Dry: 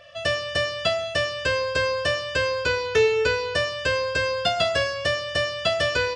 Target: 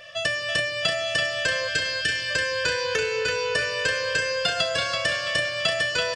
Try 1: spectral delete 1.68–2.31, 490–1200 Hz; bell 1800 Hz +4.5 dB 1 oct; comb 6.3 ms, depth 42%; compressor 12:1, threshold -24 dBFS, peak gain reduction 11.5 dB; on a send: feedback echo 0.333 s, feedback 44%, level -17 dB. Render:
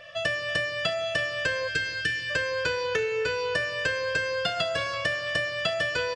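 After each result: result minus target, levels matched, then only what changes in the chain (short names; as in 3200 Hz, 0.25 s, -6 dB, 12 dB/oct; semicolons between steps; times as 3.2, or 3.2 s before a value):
echo-to-direct -11 dB; 8000 Hz band -6.0 dB
change: feedback echo 0.333 s, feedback 44%, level -6 dB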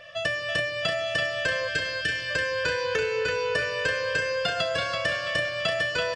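8000 Hz band -6.0 dB
add after compressor: high shelf 3900 Hz +11 dB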